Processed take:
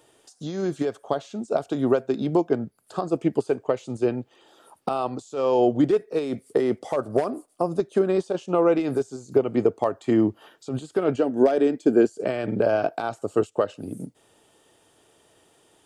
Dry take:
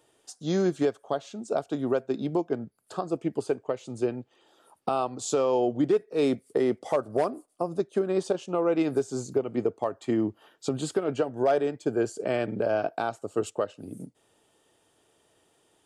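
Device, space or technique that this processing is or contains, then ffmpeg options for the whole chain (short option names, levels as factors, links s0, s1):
de-esser from a sidechain: -filter_complex "[0:a]asettb=1/sr,asplit=3[s0][s1][s2];[s0]atrim=end=11.184[s3];[s1]atrim=start=11.18:end=12.08,asetpts=PTS-STARTPTS,afade=t=in:d=0.004:c=qsin,afade=t=out:st=0.896:d=0.004:c=qsin,equalizer=f=125:t=o:w=1:g=-10,equalizer=f=250:t=o:w=1:g=9,equalizer=f=1000:t=o:w=1:g=-4[s4];[s2]atrim=start=12.076[s5];[s3][s4]acrossfade=d=0.004:c1=hsin:c2=qsin[s6];[s6][s5]acrossfade=d=0.004:c1=qsin:c2=hsin,asplit=2[s7][s8];[s8]highpass=6300,apad=whole_len=699157[s9];[s7][s9]sidechaincompress=threshold=0.00158:ratio=12:attack=3.4:release=71,volume=2.11"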